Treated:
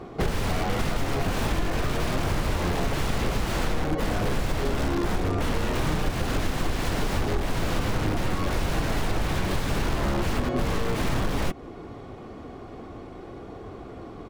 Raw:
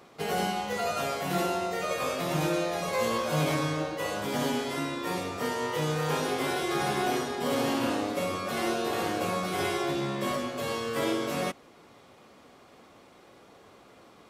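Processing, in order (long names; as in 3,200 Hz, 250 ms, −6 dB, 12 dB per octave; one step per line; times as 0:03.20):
comb filter 2.7 ms, depth 33%
wrap-around overflow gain 27.5 dB
spectral tilt −4 dB per octave
downward compressor, threshold −30 dBFS, peak gain reduction 9.5 dB
level +9 dB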